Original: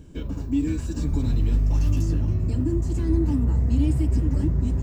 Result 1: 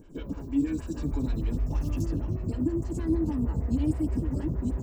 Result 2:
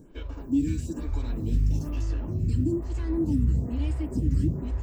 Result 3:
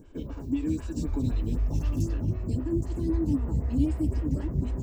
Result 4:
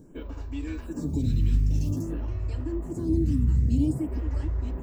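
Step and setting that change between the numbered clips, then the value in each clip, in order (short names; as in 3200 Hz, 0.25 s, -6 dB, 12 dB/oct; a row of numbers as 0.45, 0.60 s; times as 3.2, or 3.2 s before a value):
photocell phaser, rate: 6.4, 1.1, 3.9, 0.51 Hz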